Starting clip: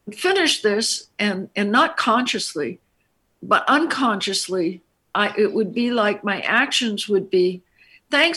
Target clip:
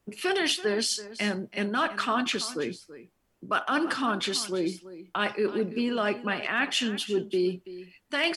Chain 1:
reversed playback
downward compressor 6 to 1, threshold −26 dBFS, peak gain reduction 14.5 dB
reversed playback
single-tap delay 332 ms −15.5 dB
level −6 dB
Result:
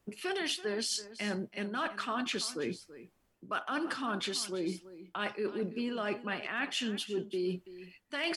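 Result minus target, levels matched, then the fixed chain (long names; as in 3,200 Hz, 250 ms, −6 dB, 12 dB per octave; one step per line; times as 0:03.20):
downward compressor: peak gain reduction +8.5 dB
reversed playback
downward compressor 6 to 1, threshold −16 dBFS, peak gain reduction 6 dB
reversed playback
single-tap delay 332 ms −15.5 dB
level −6 dB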